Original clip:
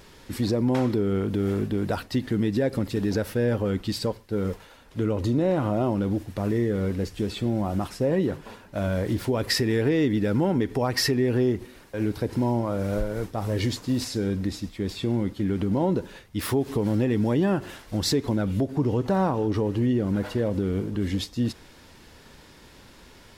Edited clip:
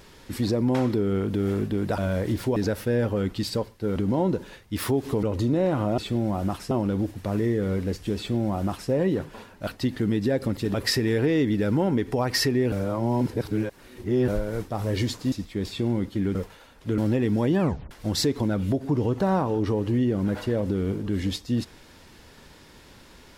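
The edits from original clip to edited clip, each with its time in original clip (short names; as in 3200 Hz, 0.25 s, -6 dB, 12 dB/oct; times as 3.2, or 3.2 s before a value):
1.98–3.05 swap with 8.79–9.37
4.45–5.08 swap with 15.59–16.86
7.29–8.02 copy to 5.83
11.35–12.91 reverse
13.95–14.56 cut
17.48 tape stop 0.31 s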